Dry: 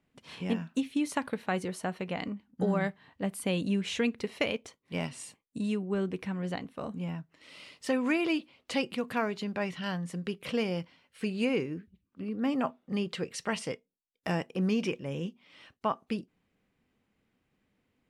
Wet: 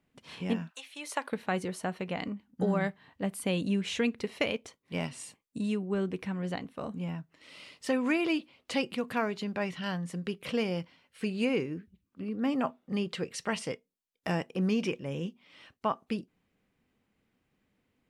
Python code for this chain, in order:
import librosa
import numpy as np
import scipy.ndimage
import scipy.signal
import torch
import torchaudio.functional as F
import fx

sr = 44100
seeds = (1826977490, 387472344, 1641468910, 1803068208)

y = fx.highpass(x, sr, hz=fx.line((0.69, 840.0), (1.3, 320.0)), slope=24, at=(0.69, 1.3), fade=0.02)